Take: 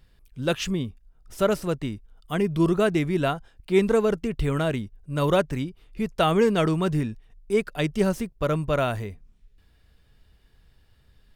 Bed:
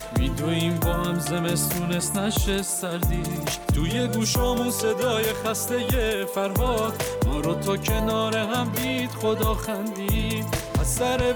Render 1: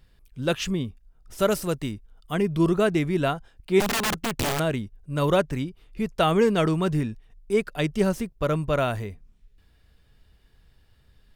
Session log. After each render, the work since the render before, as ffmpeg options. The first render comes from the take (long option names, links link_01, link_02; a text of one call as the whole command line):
ffmpeg -i in.wav -filter_complex "[0:a]asettb=1/sr,asplit=3[link_01][link_02][link_03];[link_01]atrim=end=1.404[link_04];[link_02]atrim=start=1.4:end=1.92,asetpts=PTS-STARTPTS,afade=type=in:duration=0.004:curve=qsin,afade=type=out:start_time=0.516:duration=0.004:curve=qsin,aemphasis=mode=production:type=cd[link_05];[link_03]atrim=start=1.916[link_06];[link_04][link_05]acrossfade=duration=0.004:curve1=hsin:curve2=qsin[link_07];[link_07][link_06]acrossfade=duration=0.004:curve1=qsin:curve2=hsin,asettb=1/sr,asplit=3[link_08][link_09][link_10];[link_08]atrim=end=3.804[link_11];[link_09]atrim=start=3.8:end=4.6,asetpts=PTS-STARTPTS,afade=type=in:duration=0.004:curve=qsin,afade=type=out:start_time=0.796:duration=0.004:curve=qsin,aeval=exprs='(mod(10*val(0)+1,2)-1)/10':channel_layout=same[link_12];[link_10]atrim=start=4.596[link_13];[link_11][link_12]acrossfade=duration=0.004:curve1=hsin:curve2=qsin[link_14];[link_14][link_13]acrossfade=duration=0.004:curve1=qsin:curve2=hsin" out.wav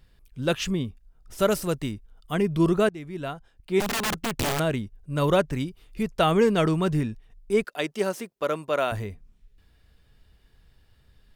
ffmpeg -i in.wav -filter_complex "[0:a]asettb=1/sr,asplit=3[link_01][link_02][link_03];[link_01]atrim=end=5.604[link_04];[link_02]atrim=start=5.6:end=6.03,asetpts=PTS-STARTPTS,afade=type=in:duration=0.004:curve=qsin,afade=type=out:start_time=0.426:duration=0.004:curve=qsin,highshelf=frequency=4300:gain=7.5[link_05];[link_03]atrim=start=6.026[link_06];[link_04][link_05]acrossfade=duration=0.004:curve1=hsin:curve2=qsin[link_07];[link_07][link_06]acrossfade=duration=0.004:curve1=qsin:curve2=hsin,asettb=1/sr,asplit=3[link_08][link_09][link_10];[link_08]atrim=end=7.644[link_11];[link_09]atrim=start=7.64:end=8.92,asetpts=PTS-STARTPTS,afade=type=in:duration=0.004:curve=qsin,afade=type=out:start_time=1.276:duration=0.004:curve=qsin,highpass=350[link_12];[link_10]atrim=start=8.916[link_13];[link_11][link_12]acrossfade=duration=0.004:curve1=hsin:curve2=qsin[link_14];[link_14][link_13]acrossfade=duration=0.004:curve1=qsin:curve2=hsin,asplit=2[link_15][link_16];[link_15]atrim=end=2.89,asetpts=PTS-STARTPTS,afade=type=out:start_time=2.886:duration=0.004:curve=hsin:silence=0.11885[link_17];[link_16]atrim=start=2.89,asetpts=PTS-STARTPTS,afade=type=in:duration=1.95:curve=qsin:silence=0.11885[link_18];[link_17][link_18]concat=n=2:v=0:a=1" out.wav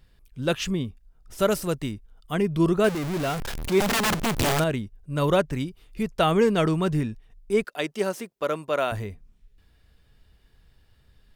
ffmpeg -i in.wav -filter_complex "[0:a]asettb=1/sr,asplit=3[link_01][link_02][link_03];[link_01]atrim=end=2.844[link_04];[link_02]atrim=start=2.84:end=4.64,asetpts=PTS-STARTPTS,afade=type=in:duration=0.004:curve=qsin,afade=type=out:start_time=1.796:duration=0.004:curve=qsin,aeval=exprs='val(0)+0.5*0.0562*sgn(val(0))':channel_layout=same[link_05];[link_03]atrim=start=4.636[link_06];[link_04][link_05]acrossfade=duration=0.004:curve1=hsin:curve2=qsin[link_07];[link_07][link_06]acrossfade=duration=0.004:curve1=qsin:curve2=hsin" out.wav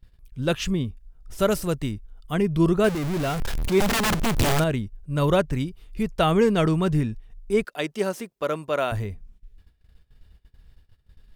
ffmpeg -i in.wav -af "agate=range=-16dB:threshold=-56dB:ratio=16:detection=peak,lowshelf=frequency=110:gain=8.5" out.wav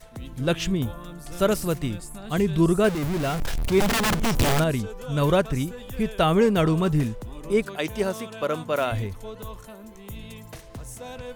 ffmpeg -i in.wav -i bed.wav -filter_complex "[1:a]volume=-15dB[link_01];[0:a][link_01]amix=inputs=2:normalize=0" out.wav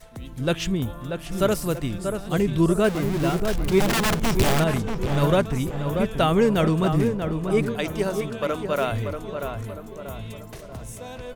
ffmpeg -i in.wav -filter_complex "[0:a]asplit=2[link_01][link_02];[link_02]adelay=636,lowpass=frequency=1900:poles=1,volume=-6dB,asplit=2[link_03][link_04];[link_04]adelay=636,lowpass=frequency=1900:poles=1,volume=0.48,asplit=2[link_05][link_06];[link_06]adelay=636,lowpass=frequency=1900:poles=1,volume=0.48,asplit=2[link_07][link_08];[link_08]adelay=636,lowpass=frequency=1900:poles=1,volume=0.48,asplit=2[link_09][link_10];[link_10]adelay=636,lowpass=frequency=1900:poles=1,volume=0.48,asplit=2[link_11][link_12];[link_12]adelay=636,lowpass=frequency=1900:poles=1,volume=0.48[link_13];[link_01][link_03][link_05][link_07][link_09][link_11][link_13]amix=inputs=7:normalize=0" out.wav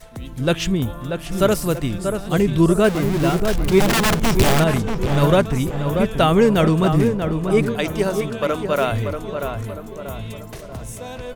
ffmpeg -i in.wav -af "volume=4.5dB" out.wav